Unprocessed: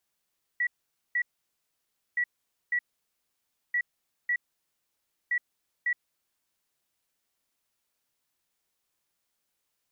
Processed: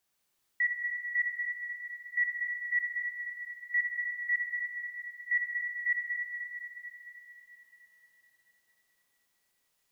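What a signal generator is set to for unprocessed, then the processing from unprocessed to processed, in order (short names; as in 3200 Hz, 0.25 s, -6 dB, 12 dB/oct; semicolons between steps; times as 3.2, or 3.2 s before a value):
beep pattern sine 1940 Hz, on 0.07 s, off 0.48 s, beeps 2, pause 0.95 s, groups 4, -23.5 dBFS
Schroeder reverb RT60 4 s, combs from 30 ms, DRR -1 dB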